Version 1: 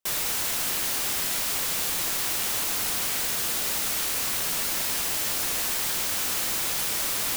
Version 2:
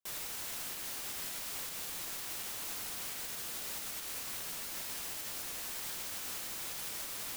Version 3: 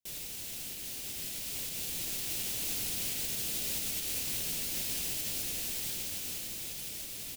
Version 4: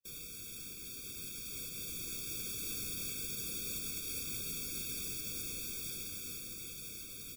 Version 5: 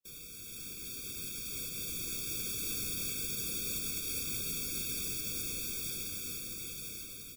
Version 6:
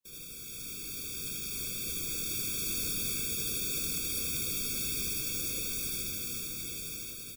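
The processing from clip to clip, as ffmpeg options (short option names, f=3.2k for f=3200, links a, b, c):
-af "alimiter=limit=-22dB:level=0:latency=1:release=264,volume=-8.5dB"
-af "firequalizer=gain_entry='entry(120,0);entry(1100,-19);entry(2600,-5)':delay=0.05:min_phase=1,dynaudnorm=f=270:g=13:m=6.5dB,volume=5dB"
-af "afftfilt=real='re*eq(mod(floor(b*sr/1024/540),2),0)':imag='im*eq(mod(floor(b*sr/1024/540),2),0)':win_size=1024:overlap=0.75,volume=-2.5dB"
-af "dynaudnorm=f=220:g=5:m=5dB,volume=-1.5dB"
-af "aecho=1:1:75.8|212.8:1|0.282"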